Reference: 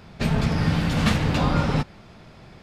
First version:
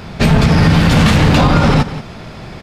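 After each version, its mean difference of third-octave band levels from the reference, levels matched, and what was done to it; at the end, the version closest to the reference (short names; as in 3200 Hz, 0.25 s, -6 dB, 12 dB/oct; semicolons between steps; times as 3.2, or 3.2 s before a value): 2.5 dB: in parallel at -3 dB: soft clip -25 dBFS, distortion -8 dB; on the sum: echo 0.179 s -15.5 dB; maximiser +12 dB; gain -1 dB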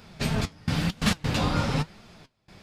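5.5 dB: high shelf 3400 Hz +9.5 dB; step gate "xxxx..xx.x.xxxxx" 133 bpm -24 dB; flange 0.99 Hz, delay 3.9 ms, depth 7.1 ms, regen +65%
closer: first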